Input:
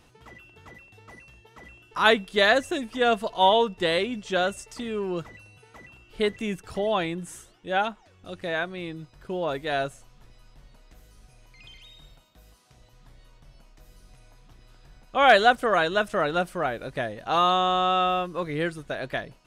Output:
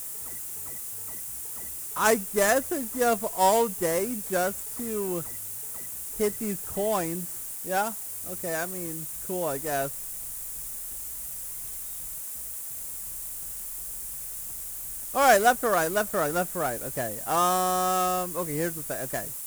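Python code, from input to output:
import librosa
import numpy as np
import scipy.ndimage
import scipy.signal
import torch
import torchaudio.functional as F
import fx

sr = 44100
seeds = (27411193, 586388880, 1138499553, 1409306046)

y = scipy.signal.medfilt(x, 15)
y = fx.quant_dither(y, sr, seeds[0], bits=8, dither='triangular')
y = fx.high_shelf_res(y, sr, hz=6200.0, db=13.0, q=1.5)
y = F.gain(torch.from_numpy(y), -1.0).numpy()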